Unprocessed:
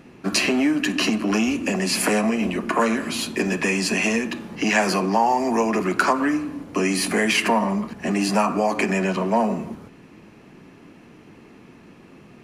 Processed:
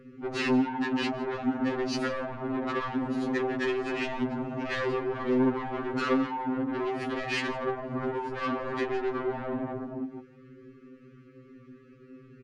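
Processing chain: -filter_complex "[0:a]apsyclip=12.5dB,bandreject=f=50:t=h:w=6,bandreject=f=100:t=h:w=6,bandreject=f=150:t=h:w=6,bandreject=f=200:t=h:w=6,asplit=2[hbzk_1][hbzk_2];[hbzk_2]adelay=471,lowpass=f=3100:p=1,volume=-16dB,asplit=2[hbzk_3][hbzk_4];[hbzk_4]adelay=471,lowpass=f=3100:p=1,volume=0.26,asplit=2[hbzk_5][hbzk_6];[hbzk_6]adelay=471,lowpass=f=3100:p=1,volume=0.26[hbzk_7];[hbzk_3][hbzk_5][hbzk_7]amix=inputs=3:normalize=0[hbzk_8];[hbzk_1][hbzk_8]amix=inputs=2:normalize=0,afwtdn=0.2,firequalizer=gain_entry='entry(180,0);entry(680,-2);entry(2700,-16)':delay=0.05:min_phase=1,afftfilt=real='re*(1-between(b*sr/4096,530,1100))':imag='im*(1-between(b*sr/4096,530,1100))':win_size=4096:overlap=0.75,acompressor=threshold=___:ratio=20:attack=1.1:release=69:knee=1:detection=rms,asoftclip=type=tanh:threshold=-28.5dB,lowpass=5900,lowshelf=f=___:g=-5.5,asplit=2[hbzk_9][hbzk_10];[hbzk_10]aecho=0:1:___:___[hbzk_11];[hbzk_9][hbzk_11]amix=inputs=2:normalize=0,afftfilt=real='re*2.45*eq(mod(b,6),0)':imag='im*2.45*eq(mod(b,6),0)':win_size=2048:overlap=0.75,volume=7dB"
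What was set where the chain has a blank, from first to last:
-18dB, 470, 160, 0.112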